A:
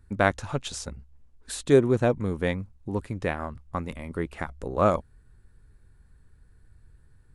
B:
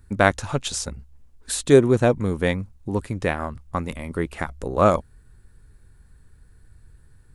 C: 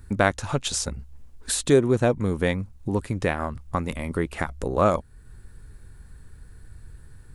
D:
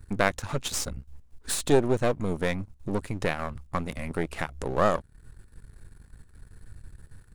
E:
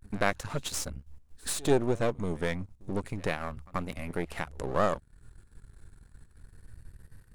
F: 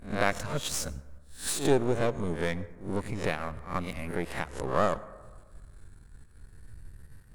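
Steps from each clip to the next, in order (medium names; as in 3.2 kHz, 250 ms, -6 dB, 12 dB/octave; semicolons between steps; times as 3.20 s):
treble shelf 5.1 kHz +6 dB; trim +4.5 dB
compression 1.5:1, threshold -38 dBFS, peak gain reduction 10.5 dB; trim +6 dB
partial rectifier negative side -12 dB
vibrato 0.31 Hz 66 cents; pre-echo 84 ms -23.5 dB; trim -3.5 dB
reverse spectral sustain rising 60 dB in 0.34 s; plate-style reverb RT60 1.4 s, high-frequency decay 0.3×, pre-delay 75 ms, DRR 18 dB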